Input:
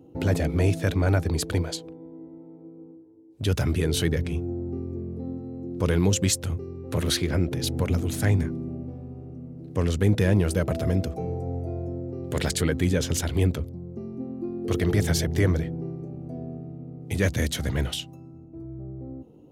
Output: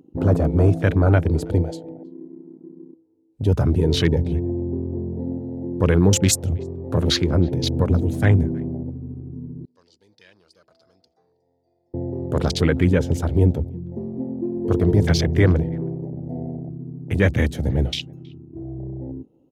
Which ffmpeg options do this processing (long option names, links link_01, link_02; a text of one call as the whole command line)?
ffmpeg -i in.wav -filter_complex "[0:a]afwtdn=0.0224,asettb=1/sr,asplit=3[link_01][link_02][link_03];[link_01]atrim=end=9.654[link_04];[link_02]atrim=start=9.65:end=11.94,asetpts=PTS-STARTPTS,afade=type=in:duration=0.004:curve=qsin,afade=type=out:start_time=2.286:duration=0.004:curve=qsin,bandpass=frequency=4700:width_type=q:width=7.5:csg=0[link_05];[link_03]atrim=start=11.936[link_06];[link_04][link_05]acrossfade=duration=0.004:curve1=hsin:curve2=qsin[link_07];[link_07][link_06]acrossfade=duration=0.004:curve1=qsin:curve2=hsin,asplit=2[link_08][link_09];[link_09]adelay=320,highpass=300,lowpass=3400,asoftclip=type=hard:threshold=-18dB,volume=-26dB[link_10];[link_08][link_10]amix=inputs=2:normalize=0,volume=6dB" out.wav